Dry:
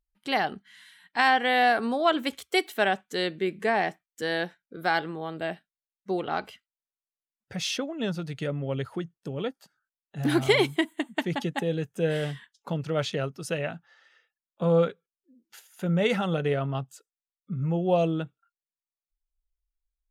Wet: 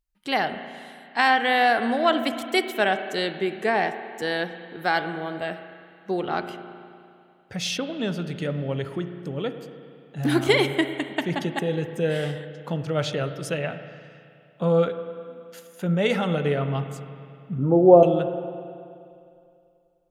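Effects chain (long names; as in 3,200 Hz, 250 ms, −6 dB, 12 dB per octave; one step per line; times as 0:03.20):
0:17.58–0:18.03: drawn EQ curve 170 Hz 0 dB, 290 Hz +14 dB, 1,400 Hz +2 dB, 2,200 Hz −20 dB
spring reverb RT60 2.5 s, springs 34/51 ms, chirp 75 ms, DRR 9 dB
level +2 dB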